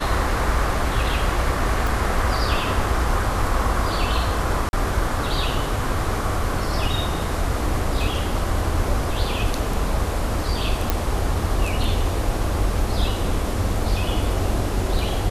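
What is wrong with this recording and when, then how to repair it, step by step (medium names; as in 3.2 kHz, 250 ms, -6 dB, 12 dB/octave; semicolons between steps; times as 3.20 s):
1.87 s: pop
4.69–4.73 s: dropout 41 ms
10.90 s: pop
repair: de-click; interpolate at 4.69 s, 41 ms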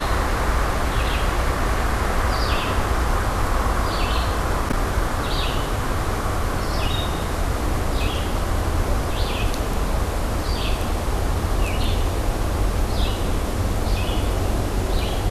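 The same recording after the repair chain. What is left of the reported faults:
1.87 s: pop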